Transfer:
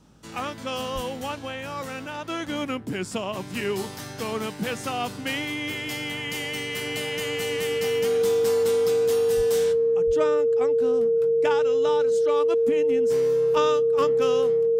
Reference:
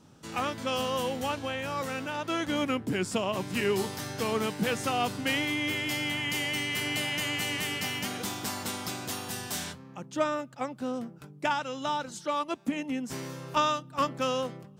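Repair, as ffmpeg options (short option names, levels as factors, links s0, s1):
-filter_complex "[0:a]bandreject=f=52:t=h:w=4,bandreject=f=104:t=h:w=4,bandreject=f=156:t=h:w=4,bandreject=f=208:t=h:w=4,bandreject=f=460:w=30,asplit=3[s0][s1][s2];[s0]afade=t=out:st=0.94:d=0.02[s3];[s1]highpass=f=140:w=0.5412,highpass=f=140:w=1.3066,afade=t=in:st=0.94:d=0.02,afade=t=out:st=1.06:d=0.02[s4];[s2]afade=t=in:st=1.06:d=0.02[s5];[s3][s4][s5]amix=inputs=3:normalize=0,asplit=3[s6][s7][s8];[s6]afade=t=out:st=9.36:d=0.02[s9];[s7]highpass=f=140:w=0.5412,highpass=f=140:w=1.3066,afade=t=in:st=9.36:d=0.02,afade=t=out:st=9.48:d=0.02[s10];[s8]afade=t=in:st=9.48:d=0.02[s11];[s9][s10][s11]amix=inputs=3:normalize=0,asplit=3[s12][s13][s14];[s12]afade=t=out:st=10.06:d=0.02[s15];[s13]highpass=f=140:w=0.5412,highpass=f=140:w=1.3066,afade=t=in:st=10.06:d=0.02,afade=t=out:st=10.18:d=0.02[s16];[s14]afade=t=in:st=10.18:d=0.02[s17];[s15][s16][s17]amix=inputs=3:normalize=0"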